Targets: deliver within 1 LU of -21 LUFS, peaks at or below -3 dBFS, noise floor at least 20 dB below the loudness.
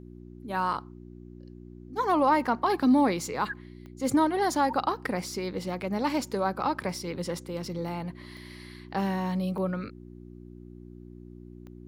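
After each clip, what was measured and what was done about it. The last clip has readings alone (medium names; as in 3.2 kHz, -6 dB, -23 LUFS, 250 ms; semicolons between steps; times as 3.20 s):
clicks found 4; hum 60 Hz; highest harmonic 360 Hz; hum level -45 dBFS; loudness -28.5 LUFS; peak level -13.0 dBFS; loudness target -21.0 LUFS
-> de-click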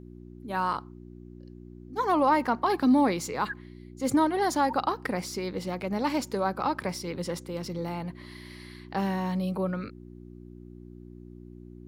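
clicks found 0; hum 60 Hz; highest harmonic 360 Hz; hum level -45 dBFS
-> de-hum 60 Hz, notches 6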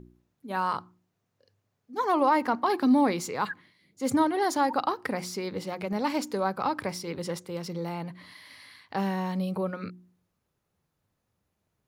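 hum not found; loudness -28.5 LUFS; peak level -12.5 dBFS; loudness target -21.0 LUFS
-> trim +7.5 dB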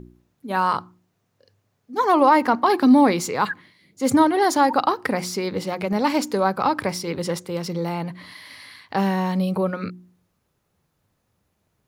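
loudness -21.0 LUFS; peak level -5.0 dBFS; noise floor -72 dBFS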